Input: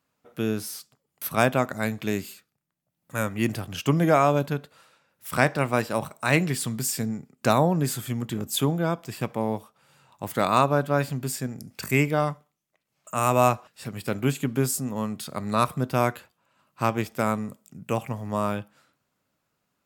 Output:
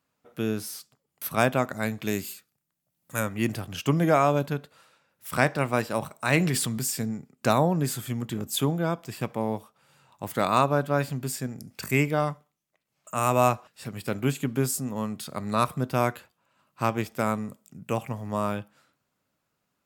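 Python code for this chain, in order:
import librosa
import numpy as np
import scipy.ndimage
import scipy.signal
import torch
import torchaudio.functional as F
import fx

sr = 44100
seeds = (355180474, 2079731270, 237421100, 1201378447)

y = fx.high_shelf(x, sr, hz=fx.line((2.04, 6000.0), (3.19, 3700.0)), db=8.0, at=(2.04, 3.19), fade=0.02)
y = fx.sustainer(y, sr, db_per_s=24.0, at=(6.37, 6.87))
y = y * librosa.db_to_amplitude(-1.5)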